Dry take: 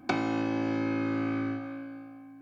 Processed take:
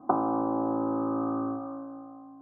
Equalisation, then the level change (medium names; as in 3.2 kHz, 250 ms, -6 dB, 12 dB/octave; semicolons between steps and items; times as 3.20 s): steep low-pass 1.2 kHz 72 dB/octave; tilt EQ +4.5 dB/octave; +8.5 dB